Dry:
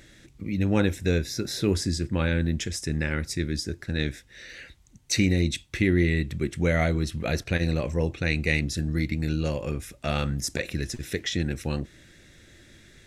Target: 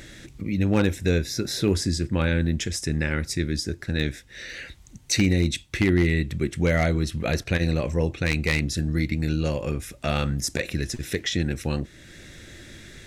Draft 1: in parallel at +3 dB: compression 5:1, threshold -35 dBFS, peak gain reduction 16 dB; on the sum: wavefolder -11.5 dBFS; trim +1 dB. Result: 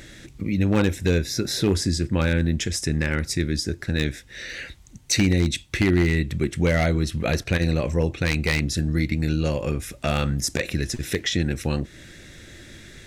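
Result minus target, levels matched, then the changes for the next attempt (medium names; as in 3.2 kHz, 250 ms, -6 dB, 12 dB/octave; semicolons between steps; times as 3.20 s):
compression: peak gain reduction -9 dB
change: compression 5:1, threshold -46 dBFS, peak gain reduction 24.5 dB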